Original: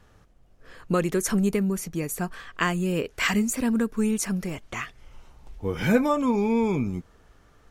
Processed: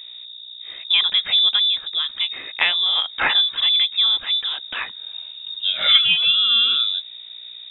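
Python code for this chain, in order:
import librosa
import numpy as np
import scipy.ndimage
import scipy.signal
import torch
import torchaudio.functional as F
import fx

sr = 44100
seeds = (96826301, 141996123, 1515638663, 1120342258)

y = fx.add_hum(x, sr, base_hz=60, snr_db=19)
y = fx.freq_invert(y, sr, carrier_hz=3700)
y = y * 10.0 ** (5.5 / 20.0)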